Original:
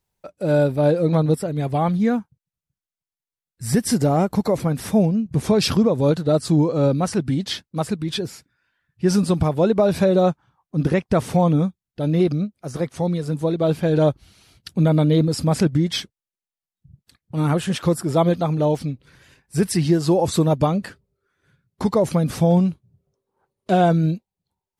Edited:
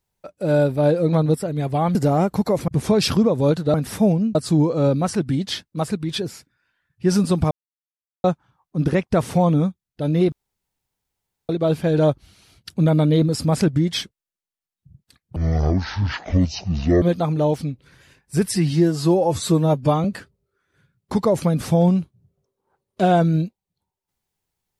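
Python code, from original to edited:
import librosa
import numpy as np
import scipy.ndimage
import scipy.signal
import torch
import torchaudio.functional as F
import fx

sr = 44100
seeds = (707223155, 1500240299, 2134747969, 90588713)

y = fx.edit(x, sr, fx.cut(start_s=1.95, length_s=1.99),
    fx.move(start_s=4.67, length_s=0.61, to_s=6.34),
    fx.silence(start_s=9.5, length_s=0.73),
    fx.room_tone_fill(start_s=12.31, length_s=1.17),
    fx.speed_span(start_s=17.35, length_s=0.88, speed=0.53),
    fx.stretch_span(start_s=19.71, length_s=1.03, factor=1.5), tone=tone)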